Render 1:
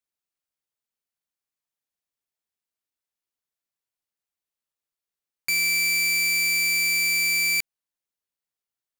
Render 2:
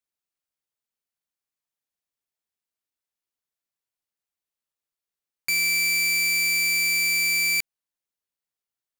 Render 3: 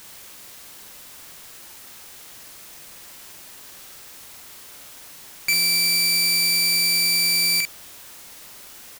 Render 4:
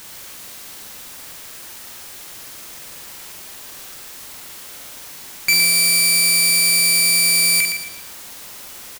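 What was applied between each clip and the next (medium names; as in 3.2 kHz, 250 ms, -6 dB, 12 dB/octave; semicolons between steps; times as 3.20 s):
no audible change
in parallel at -9.5 dB: word length cut 6-bit, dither triangular; on the sum: doubling 47 ms -5 dB; trim +1.5 dB
feedback delay 116 ms, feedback 37%, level -6.5 dB; trim +5 dB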